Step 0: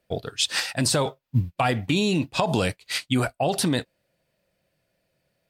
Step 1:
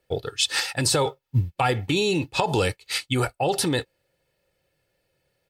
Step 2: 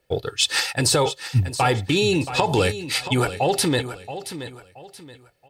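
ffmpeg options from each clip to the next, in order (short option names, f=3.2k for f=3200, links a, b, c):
-af "aecho=1:1:2.3:0.57"
-filter_complex "[0:a]asplit=2[a][b];[b]asoftclip=type=tanh:threshold=-16dB,volume=-7dB[c];[a][c]amix=inputs=2:normalize=0,aecho=1:1:676|1352|2028:0.251|0.0779|0.0241"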